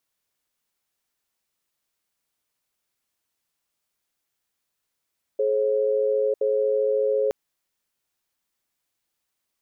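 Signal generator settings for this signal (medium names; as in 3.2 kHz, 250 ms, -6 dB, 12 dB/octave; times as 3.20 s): cadence 426 Hz, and 540 Hz, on 0.95 s, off 0.07 s, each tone -22 dBFS 1.92 s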